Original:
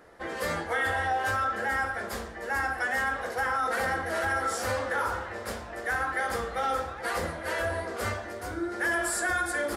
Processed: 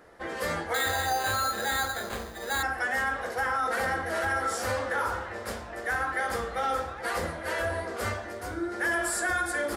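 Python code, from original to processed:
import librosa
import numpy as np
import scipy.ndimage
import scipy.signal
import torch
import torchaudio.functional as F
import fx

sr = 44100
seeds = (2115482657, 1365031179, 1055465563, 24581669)

y = fx.resample_bad(x, sr, factor=8, down='none', up='hold', at=(0.74, 2.63))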